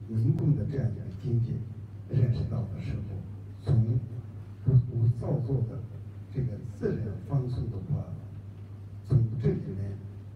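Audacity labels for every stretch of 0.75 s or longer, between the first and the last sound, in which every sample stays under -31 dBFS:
8.130000	9.100000	silence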